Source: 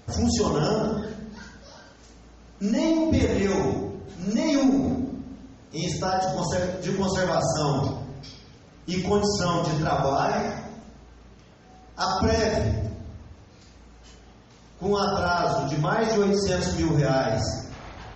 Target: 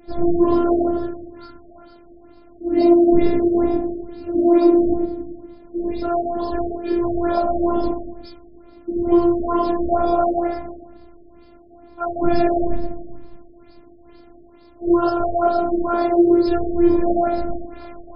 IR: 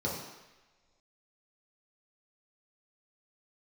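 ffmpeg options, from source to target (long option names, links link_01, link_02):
-filter_complex "[1:a]atrim=start_sample=2205,atrim=end_sample=3969[link_01];[0:a][link_01]afir=irnorm=-1:irlink=0,afftfilt=real='hypot(re,im)*cos(PI*b)':imag='0':win_size=512:overlap=0.75,afftfilt=real='re*lt(b*sr/1024,660*pow(5300/660,0.5+0.5*sin(2*PI*2.2*pts/sr)))':imag='im*lt(b*sr/1024,660*pow(5300/660,0.5+0.5*sin(2*PI*2.2*pts/sr)))':win_size=1024:overlap=0.75"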